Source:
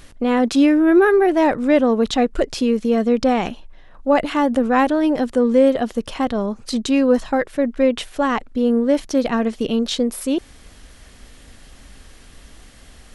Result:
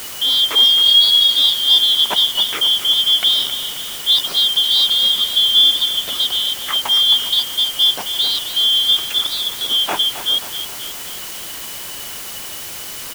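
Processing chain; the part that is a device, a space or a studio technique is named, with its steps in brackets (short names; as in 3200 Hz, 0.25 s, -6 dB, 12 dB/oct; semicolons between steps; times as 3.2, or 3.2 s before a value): 8.99–9.69 steep high-pass 320 Hz; split-band scrambled radio (four-band scrambler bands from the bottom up 3412; BPF 320–3100 Hz; white noise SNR 13 dB); feedback echo 0.267 s, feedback 53%, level -11 dB; gain +5 dB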